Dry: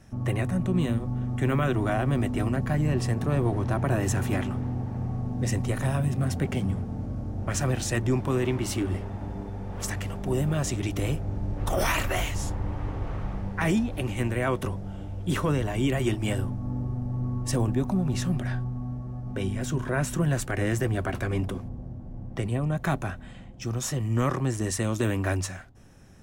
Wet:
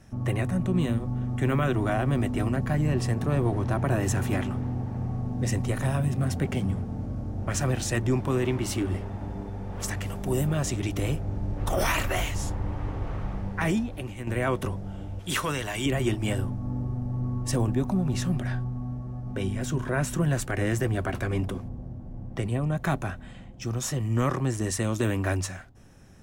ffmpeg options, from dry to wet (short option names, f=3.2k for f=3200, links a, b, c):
-filter_complex "[0:a]asettb=1/sr,asplit=3[a][b][c];[a]atrim=end=10.064[d];[b]atrim=start=10.06:end=10.47,asetpts=PTS-STARTPTS,afade=t=in:d=0.004:c=qsin,afade=t=out:st=0.406:d=0.004:c=qsin,highshelf=f=7.7k:g=10.5[e];[c]atrim=start=10.466[f];[d][e]acrossfade=d=0.004:c1=hsin:c2=qsin[g];[g][f]acrossfade=d=0.004:c1=qsin:c2=hsin,asettb=1/sr,asplit=3[h][i][j];[h]atrim=end=15.194[k];[i]atrim=start=15.19:end=15.86,asetpts=PTS-STARTPTS,afade=t=in:d=0.004:c=qsin,afade=t=out:st=0.666:d=0.004:c=qsin,tiltshelf=f=880:g=-8[l];[j]atrim=start=15.856[m];[k][l]acrossfade=d=0.004:c1=hsin:c2=qsin[n];[n][m]acrossfade=d=0.004:c1=qsin:c2=hsin,asplit=2[o][p];[o]atrim=end=14.27,asetpts=PTS-STARTPTS,afade=t=out:st=13.56:d=0.71:silence=0.298538[q];[p]atrim=start=14.27,asetpts=PTS-STARTPTS,afade=t=in:d=0.004:c=hsin:silence=0.298538[r];[q][r]concat=n=2:v=0:a=1"